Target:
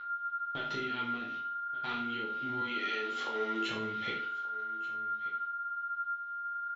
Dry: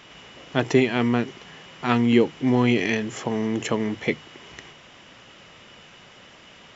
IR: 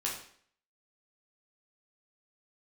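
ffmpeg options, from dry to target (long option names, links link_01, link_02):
-filter_complex "[0:a]asettb=1/sr,asplit=3[link_01][link_02][link_03];[link_01]atrim=end=2.614[link_04];[link_02]atrim=start=2.61:end=3.68,asetpts=PTS-STARTPTS,afade=type=in:duration=0.004:curve=qsin,afade=type=out:start_time=1.066:duration=0.004:curve=qsin,highpass=frequency=280:width=0.5412,highpass=frequency=280:width=1.3066[link_05];[link_03]atrim=start=3.676[link_06];[link_04][link_05]acrossfade=duration=0.004:curve1=hsin:curve2=qsin[link_07];[link_07][link_06]acrossfade=duration=0.004:curve1=qsin:curve2=hsin,agate=range=-29dB:threshold=-36dB:ratio=16:detection=peak,acompressor=threshold=-28dB:ratio=6,aeval=exprs='val(0)+0.0355*sin(2*PI*1400*n/s)':channel_layout=same,lowpass=frequency=3900:width_type=q:width=4.7,flanger=delay=8.4:depth=9.8:regen=37:speed=0.4:shape=sinusoidal,aecho=1:1:1182:0.126[link_08];[1:a]atrim=start_sample=2205,asetrate=48510,aresample=44100[link_09];[link_08][link_09]afir=irnorm=-1:irlink=0,volume=-8dB"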